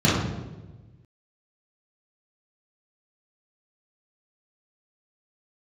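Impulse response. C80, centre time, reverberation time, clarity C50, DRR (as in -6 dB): 3.5 dB, 74 ms, 1.2 s, 0.5 dB, -9.5 dB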